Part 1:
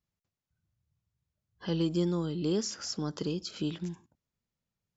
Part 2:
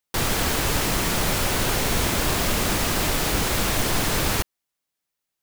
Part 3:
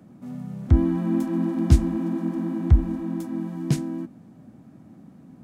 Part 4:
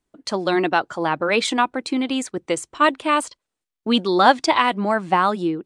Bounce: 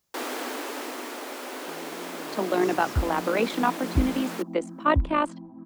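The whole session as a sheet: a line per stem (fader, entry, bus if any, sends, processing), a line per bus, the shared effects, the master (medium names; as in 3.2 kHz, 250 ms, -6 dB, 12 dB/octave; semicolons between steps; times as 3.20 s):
-14.5 dB, 0.00 s, no send, de-esser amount 80%; tone controls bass -13 dB, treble +14 dB; level flattener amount 50%
-2.5 dB, 0.00 s, no send, steep high-pass 240 Hz 96 dB/octave; auto duck -6 dB, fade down 1.25 s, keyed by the first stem
-18.0 dB, 2.25 s, no send, bass shelf 170 Hz +11.5 dB; step-sequenced low-pass 4.5 Hz 690–1600 Hz
-0.5 dB, 2.05 s, no send, low-pass 3.7 kHz 6 dB/octave; AM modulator 53 Hz, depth 45%; steep high-pass 180 Hz 96 dB/octave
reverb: none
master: treble shelf 2.3 kHz -9.5 dB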